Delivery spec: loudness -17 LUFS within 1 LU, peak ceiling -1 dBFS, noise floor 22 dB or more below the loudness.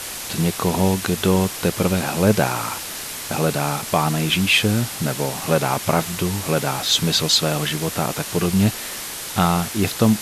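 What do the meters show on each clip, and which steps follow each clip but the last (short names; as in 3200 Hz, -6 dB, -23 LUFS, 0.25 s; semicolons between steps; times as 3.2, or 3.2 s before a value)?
noise floor -31 dBFS; noise floor target -42 dBFS; loudness -20.0 LUFS; peak -3.0 dBFS; loudness target -17.0 LUFS
-> denoiser 11 dB, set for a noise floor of -31 dBFS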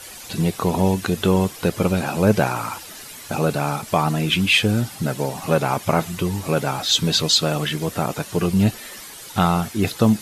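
noise floor -38 dBFS; noise floor target -43 dBFS
-> denoiser 6 dB, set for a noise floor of -38 dBFS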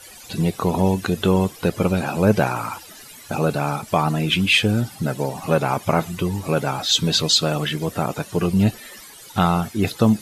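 noise floor -42 dBFS; noise floor target -43 dBFS
-> denoiser 6 dB, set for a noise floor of -42 dBFS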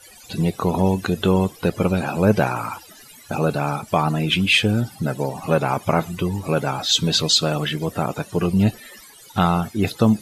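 noise floor -46 dBFS; loudness -20.5 LUFS; peak -3.5 dBFS; loudness target -17.0 LUFS
-> gain +3.5 dB; limiter -1 dBFS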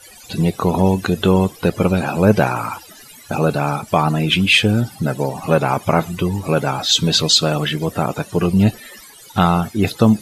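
loudness -17.0 LUFS; peak -1.0 dBFS; noise floor -42 dBFS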